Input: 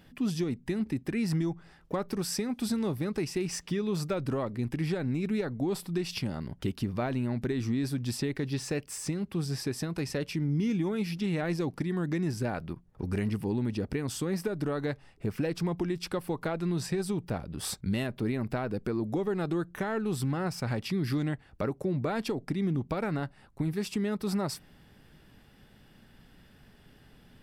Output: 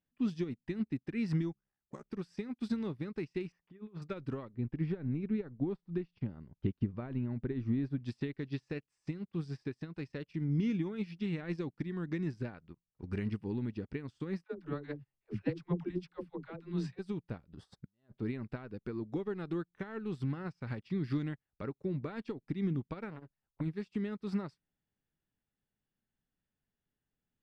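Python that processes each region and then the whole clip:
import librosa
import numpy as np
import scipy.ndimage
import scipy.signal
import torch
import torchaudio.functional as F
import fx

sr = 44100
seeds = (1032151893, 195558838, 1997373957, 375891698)

y = fx.chain(x, sr, fx.ring_mod(carrier_hz=32.0),
    fx.resample_bad(factor=6, down='filtered', up='hold'), at=(1.52, 2.11))
y = fx.chain(y, sr, fx.lowpass(hz=2000.0, slope=12),
    fx.low_shelf(hz=190.0, db=-5.0),
    fx.over_compress(threshold_db=-34.0, ratio=-0.5), at=(3.52, 4.02))
y = fx.chain(y, sr, fx.lowpass(hz=1200.0, slope=6),
    fx.low_shelf(hz=82.0, db=5.5), at=(4.54, 8.0))
y = fx.chain(y, sr, fx.high_shelf(hz=10000.0, db=-11.5),
    fx.dispersion(late='lows', ms=111.0, hz=340.0), at=(14.44, 16.99))
y = fx.chain(y, sr, fx.peak_eq(hz=2400.0, db=-12.0, octaves=0.36),
    fx.over_compress(threshold_db=-38.0, ratio=-0.5), at=(17.53, 18.18))
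y = fx.chain(y, sr, fx.low_shelf(hz=140.0, db=4.5),
    fx.transformer_sat(knee_hz=700.0), at=(23.1, 23.61))
y = scipy.signal.sosfilt(scipy.signal.butter(2, 4000.0, 'lowpass', fs=sr, output='sos'), y)
y = fx.dynamic_eq(y, sr, hz=690.0, q=1.7, threshold_db=-48.0, ratio=4.0, max_db=-7)
y = fx.upward_expand(y, sr, threshold_db=-48.0, expansion=2.5)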